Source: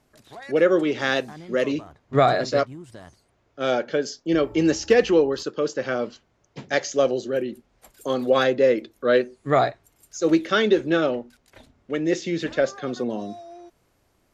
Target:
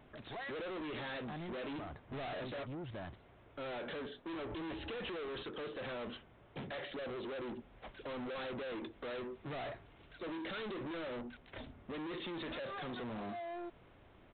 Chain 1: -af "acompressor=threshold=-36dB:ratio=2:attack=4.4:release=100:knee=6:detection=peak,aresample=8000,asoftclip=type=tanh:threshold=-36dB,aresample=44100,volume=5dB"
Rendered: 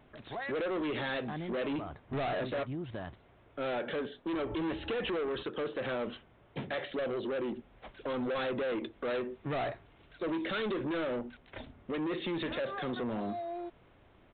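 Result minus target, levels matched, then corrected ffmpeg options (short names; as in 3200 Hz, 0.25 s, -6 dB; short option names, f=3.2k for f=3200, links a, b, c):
soft clip: distortion -4 dB
-af "acompressor=threshold=-36dB:ratio=2:attack=4.4:release=100:knee=6:detection=peak,aresample=8000,asoftclip=type=tanh:threshold=-46dB,aresample=44100,volume=5dB"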